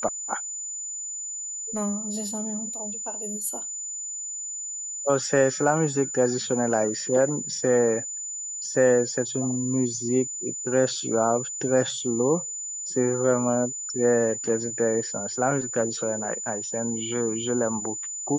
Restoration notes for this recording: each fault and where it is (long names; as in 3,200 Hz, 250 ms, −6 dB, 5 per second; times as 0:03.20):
whistle 7,000 Hz −31 dBFS